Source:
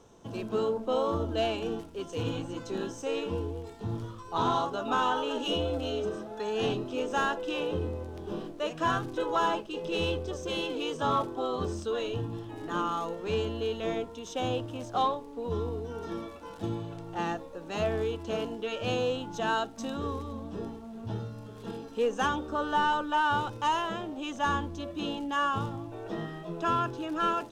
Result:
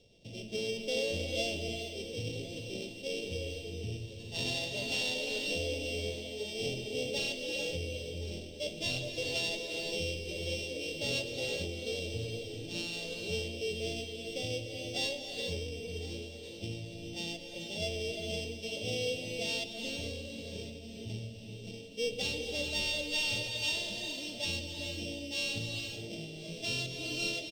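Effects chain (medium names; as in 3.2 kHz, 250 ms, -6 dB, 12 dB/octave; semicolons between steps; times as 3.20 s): sorted samples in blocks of 16 samples; FFT filter 130 Hz 0 dB, 340 Hz -7 dB, 580 Hz +1 dB, 1.1 kHz -28 dB, 1.6 kHz -24 dB, 3.5 kHz +8 dB, 6 kHz +1 dB, 12 kHz -17 dB; on a send: delay 1061 ms -16.5 dB; on the sum: gated-style reverb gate 460 ms rising, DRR 3.5 dB; trim -4.5 dB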